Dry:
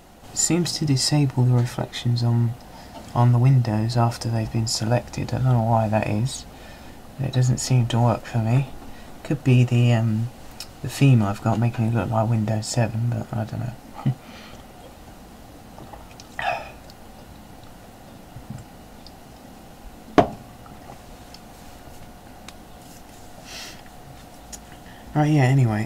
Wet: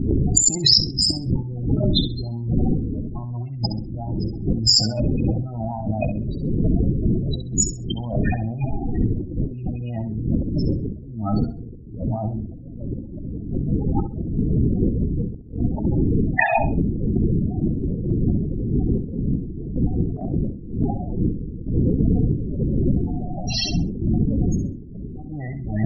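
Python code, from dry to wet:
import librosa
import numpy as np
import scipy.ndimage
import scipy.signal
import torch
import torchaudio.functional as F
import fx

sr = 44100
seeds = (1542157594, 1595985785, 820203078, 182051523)

y = fx.spec_quant(x, sr, step_db=15)
y = fx.dmg_wind(y, sr, seeds[0], corner_hz=230.0, level_db=-18.0)
y = fx.peak_eq(y, sr, hz=4400.0, db=3.0, octaves=0.56)
y = fx.spec_topn(y, sr, count=16)
y = fx.over_compress(y, sr, threshold_db=-30.0, ratio=-1.0)
y = fx.high_shelf(y, sr, hz=3100.0, db=8.0)
y = fx.echo_feedback(y, sr, ms=66, feedback_pct=19, wet_db=-11)
y = y * 10.0 ** (4.0 / 20.0)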